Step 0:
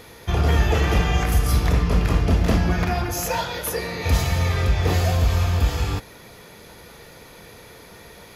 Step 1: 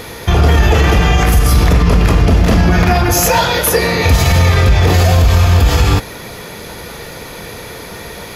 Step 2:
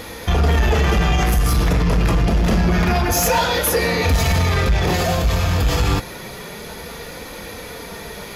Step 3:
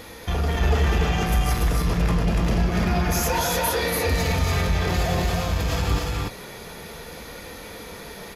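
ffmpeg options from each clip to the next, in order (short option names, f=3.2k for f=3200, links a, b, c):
-af "alimiter=level_in=16dB:limit=-1dB:release=50:level=0:latency=1,volume=-1dB"
-af "flanger=delay=3.6:depth=2.8:regen=-44:speed=0.27:shape=triangular,asoftclip=type=tanh:threshold=-9.5dB"
-filter_complex "[0:a]asplit=2[a][b];[b]aecho=0:1:236.2|288.6:0.282|0.794[c];[a][c]amix=inputs=2:normalize=0,aresample=32000,aresample=44100,volume=-7.5dB"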